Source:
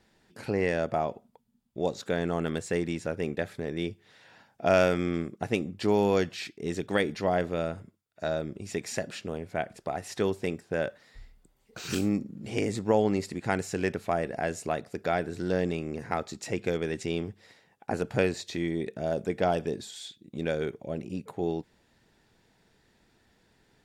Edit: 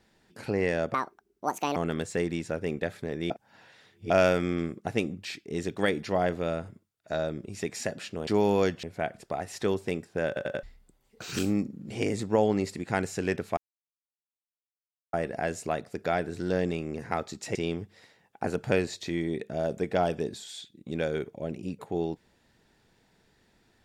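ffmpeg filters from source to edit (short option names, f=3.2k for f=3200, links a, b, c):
-filter_complex "[0:a]asplit=14[a][b][c][d][e][f][g][h][i][j][k][l][m][n];[a]atrim=end=0.944[o];[b]atrim=start=0.94:end=2.32,asetpts=PTS-STARTPTS,asetrate=74088,aresample=44100[p];[c]atrim=start=2.316:end=3.862[q];[d]atrim=start=3.858:end=4.662,asetpts=PTS-STARTPTS,areverse[r];[e]atrim=start=4.658:end=5.812[s];[f]atrim=start=6.368:end=9.392[t];[g]atrim=start=5.808:end=6.372[u];[h]atrim=start=9.388:end=10.922[v];[i]atrim=start=10.828:end=10.922[w];[j]atrim=start=10.828:end=10.922[x];[k]atrim=start=10.828:end=10.922[y];[l]atrim=start=11.188:end=14.13,asetpts=PTS-STARTPTS,afade=t=out:st=2.938:d=0.004:c=hsin,apad=pad_dur=1.56[z];[m]atrim=start=14.13:end=16.552,asetpts=PTS-STARTPTS,afade=t=in:d=0.004:c=hsin[aa];[n]atrim=start=17.018[ab];[o][p]acrossfade=d=0.004:c1=hsin:c2=hsin[ac];[ac][q]acrossfade=d=0.004:c1=hsin:c2=hsin[ad];[ad][r]acrossfade=d=0.004:c1=hsin:c2=hsin[ae];[ae][s]acrossfade=d=0.004:c1=hsin:c2=hsin[af];[af][t]acrossfade=d=0.004:c1=hsin:c2=hsin[ag];[ag][u]acrossfade=d=0.004:c1=hsin:c2=hsin[ah];[ah][v]acrossfade=d=0.004:c1=hsin:c2=hsin[ai];[ai][w]acrossfade=d=0.004:c1=hsin:c2=hsin[aj];[aj][x]acrossfade=d=0.004:c1=hsin:c2=hsin[ak];[ak][y]acrossfade=d=0.004:c1=hsin:c2=hsin[al];[z][aa]concat=n=2:v=0:a=1[am];[al][am]acrossfade=d=0.004:c1=hsin:c2=hsin[an];[an][ab]acrossfade=d=0.004:c1=hsin:c2=hsin"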